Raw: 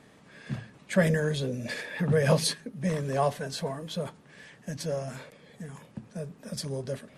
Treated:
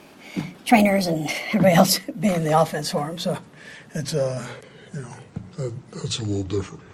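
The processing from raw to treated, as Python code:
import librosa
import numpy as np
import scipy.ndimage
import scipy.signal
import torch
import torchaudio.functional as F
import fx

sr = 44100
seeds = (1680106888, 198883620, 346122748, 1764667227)

y = fx.speed_glide(x, sr, from_pct=138, to_pct=69)
y = fx.hum_notches(y, sr, base_hz=60, count=3)
y = y * 10.0 ** (8.5 / 20.0)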